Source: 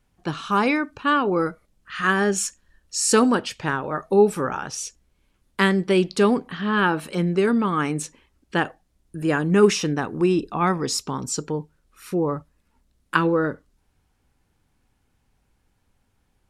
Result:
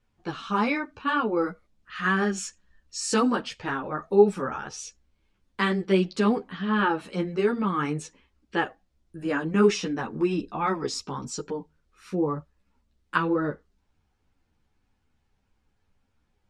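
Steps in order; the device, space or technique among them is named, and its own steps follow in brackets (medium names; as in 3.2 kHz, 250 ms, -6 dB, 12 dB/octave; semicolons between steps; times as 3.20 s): string-machine ensemble chorus (three-phase chorus; low-pass 6.3 kHz 12 dB/octave); trim -1.5 dB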